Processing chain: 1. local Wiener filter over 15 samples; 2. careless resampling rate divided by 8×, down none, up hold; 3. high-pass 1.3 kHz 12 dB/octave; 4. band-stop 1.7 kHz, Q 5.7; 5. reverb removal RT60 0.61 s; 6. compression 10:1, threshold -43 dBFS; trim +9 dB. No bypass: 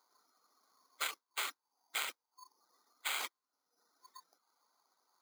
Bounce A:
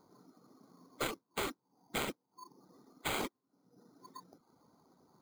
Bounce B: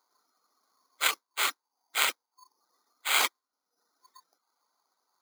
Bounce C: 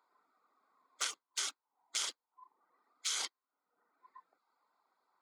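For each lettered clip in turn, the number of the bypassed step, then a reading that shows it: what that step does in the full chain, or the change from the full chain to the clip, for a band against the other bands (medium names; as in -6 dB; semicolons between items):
3, 250 Hz band +24.5 dB; 6, mean gain reduction 9.0 dB; 2, 8 kHz band +10.5 dB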